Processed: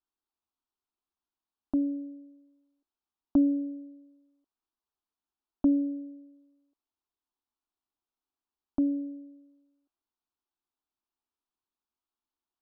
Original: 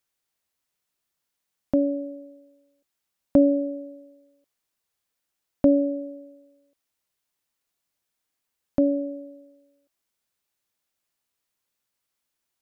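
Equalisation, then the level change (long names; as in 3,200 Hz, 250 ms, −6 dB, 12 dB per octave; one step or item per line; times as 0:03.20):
high-frequency loss of the air 250 metres
phaser with its sweep stopped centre 540 Hz, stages 6
−3.5 dB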